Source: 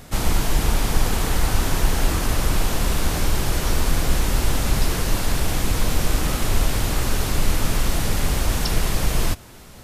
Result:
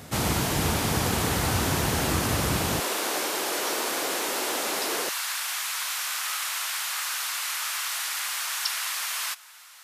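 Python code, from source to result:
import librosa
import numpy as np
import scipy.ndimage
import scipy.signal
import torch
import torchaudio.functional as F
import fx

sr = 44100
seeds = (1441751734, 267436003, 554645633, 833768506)

y = fx.highpass(x, sr, hz=fx.steps((0.0, 79.0), (2.8, 340.0), (5.09, 1100.0)), slope=24)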